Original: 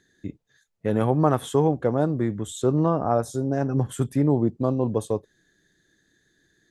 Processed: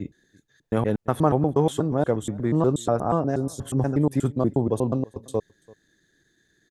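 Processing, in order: slices played last to first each 120 ms, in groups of 3; delay 337 ms -24 dB

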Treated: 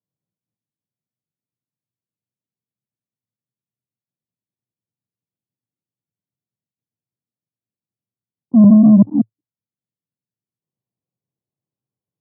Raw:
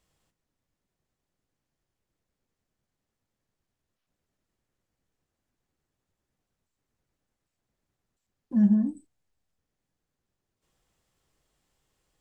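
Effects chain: chunks repeated in reverse 192 ms, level -1 dB; gate -38 dBFS, range -14 dB; waveshaping leveller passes 3; Chebyshev band-pass 110–1100 Hz, order 4; tilt EQ -4.5 dB/octave; trim -2 dB

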